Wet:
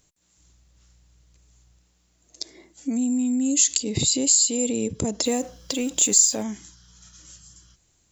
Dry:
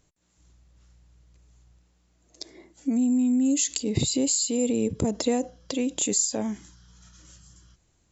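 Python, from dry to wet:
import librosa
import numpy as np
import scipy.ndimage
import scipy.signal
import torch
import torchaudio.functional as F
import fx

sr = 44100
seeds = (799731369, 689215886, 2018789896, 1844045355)

y = fx.law_mismatch(x, sr, coded='mu', at=(5.24, 6.42), fade=0.02)
y = fx.high_shelf(y, sr, hz=2900.0, db=9.5)
y = y * 10.0 ** (-1.0 / 20.0)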